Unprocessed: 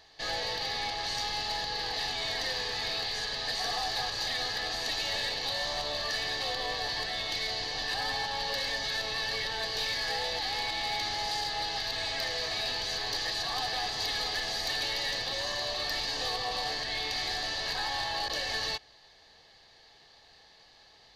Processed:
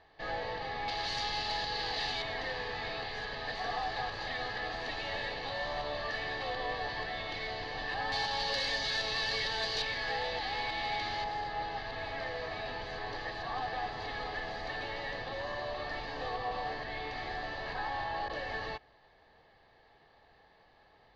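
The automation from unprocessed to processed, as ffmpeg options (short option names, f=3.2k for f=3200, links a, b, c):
-af "asetnsamples=n=441:p=0,asendcmd='0.88 lowpass f 4200;2.22 lowpass f 2200;8.12 lowpass f 5700;9.82 lowpass f 2800;11.24 lowpass f 1700',lowpass=1.8k"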